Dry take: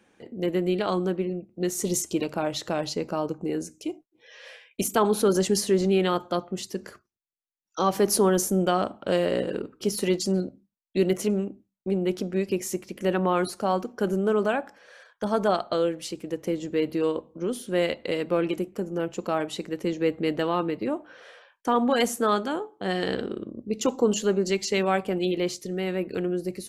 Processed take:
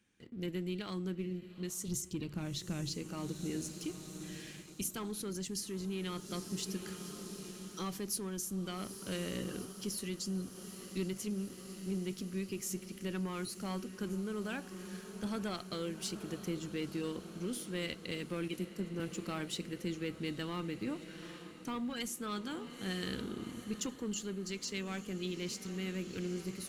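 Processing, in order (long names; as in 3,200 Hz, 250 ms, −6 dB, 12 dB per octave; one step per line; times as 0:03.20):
0:01.88–0:02.94: low-shelf EQ 270 Hz +11.5 dB
feedback delay with all-pass diffusion 858 ms, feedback 77%, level −15.5 dB
leveller curve on the samples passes 1
guitar amp tone stack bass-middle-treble 6-0-2
speech leveller within 5 dB 0.5 s
0:18.48–0:19.00: multiband upward and downward expander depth 70%
level +4 dB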